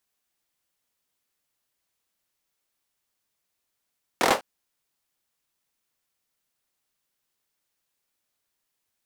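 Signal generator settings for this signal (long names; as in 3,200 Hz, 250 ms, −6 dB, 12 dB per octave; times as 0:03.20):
synth clap length 0.20 s, bursts 5, apart 24 ms, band 630 Hz, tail 0.20 s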